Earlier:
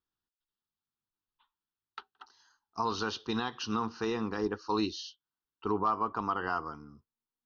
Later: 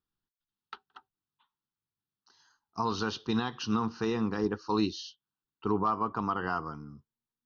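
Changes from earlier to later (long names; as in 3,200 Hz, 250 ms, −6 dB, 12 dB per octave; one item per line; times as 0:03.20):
background: entry −1.25 s
master: add parametric band 150 Hz +8.5 dB 1.3 octaves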